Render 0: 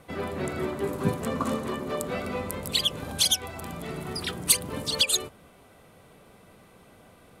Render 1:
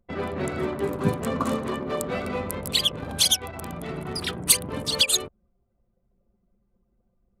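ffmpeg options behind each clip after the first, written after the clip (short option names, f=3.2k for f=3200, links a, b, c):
-af "anlmdn=0.631,volume=2.5dB"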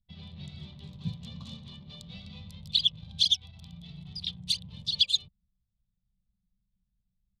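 -af "firequalizer=gain_entry='entry(180,0);entry(270,-24);entry(390,-28);entry(560,-24);entry(840,-18);entry(1400,-28);entry(3500,9);entry(7900,-15);entry(11000,-23)':delay=0.05:min_phase=1,volume=-8dB"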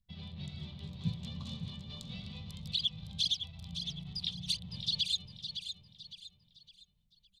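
-filter_complex "[0:a]alimiter=limit=-21.5dB:level=0:latency=1:release=129,asplit=2[a][b];[b]aecho=0:1:560|1120|1680|2240:0.376|0.135|0.0487|0.0175[c];[a][c]amix=inputs=2:normalize=0"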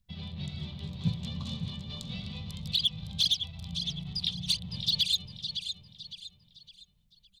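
-af "volume=24dB,asoftclip=hard,volume=-24dB,volume=5.5dB"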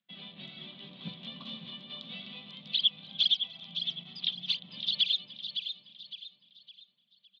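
-af "highpass=f=250:w=0.5412,highpass=f=250:w=1.3066,equalizer=f=440:t=q:w=4:g=-8,equalizer=f=880:t=q:w=4:g=-7,equalizer=f=3.2k:t=q:w=4:g=5,lowpass=f=3.4k:w=0.5412,lowpass=f=3.4k:w=1.3066,aecho=1:1:297|594|891|1188:0.0708|0.0382|0.0206|0.0111,volume=1dB"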